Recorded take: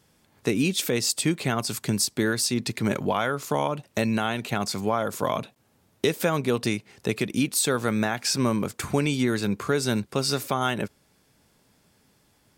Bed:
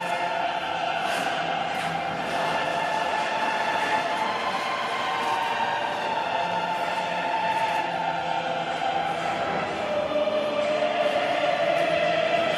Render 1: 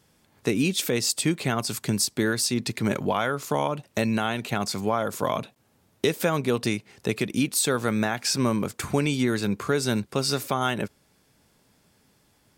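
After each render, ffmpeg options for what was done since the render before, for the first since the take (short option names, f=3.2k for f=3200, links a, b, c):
-af anull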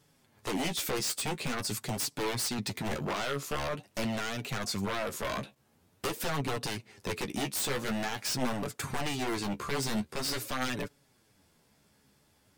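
-af "aeval=exprs='0.0708*(abs(mod(val(0)/0.0708+3,4)-2)-1)':c=same,flanger=delay=6.9:depth=7.7:regen=21:speed=0.46:shape=sinusoidal"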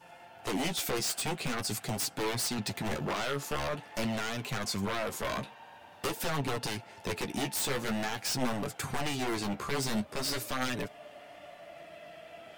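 -filter_complex "[1:a]volume=-26dB[a];[0:a][a]amix=inputs=2:normalize=0"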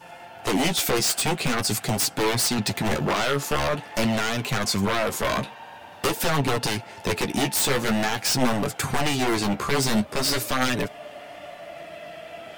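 -af "volume=9.5dB"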